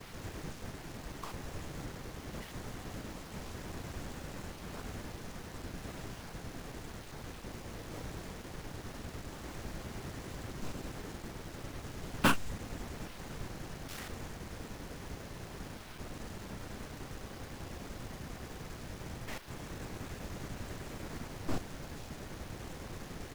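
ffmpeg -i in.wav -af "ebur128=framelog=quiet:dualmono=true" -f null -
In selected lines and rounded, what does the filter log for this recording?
Integrated loudness:
  I:         -40.1 LUFS
  Threshold: -50.1 LUFS
Loudness range:
  LRA:         7.6 LU
  Threshold: -60.0 LUFS
  LRA low:   -42.7 LUFS
  LRA high:  -35.1 LUFS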